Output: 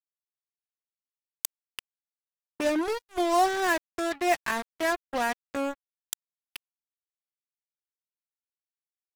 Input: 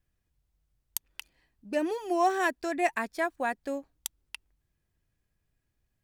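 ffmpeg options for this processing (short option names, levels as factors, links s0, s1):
-af "atempo=0.66,acrusher=bits=4:mix=0:aa=0.5,volume=1.19"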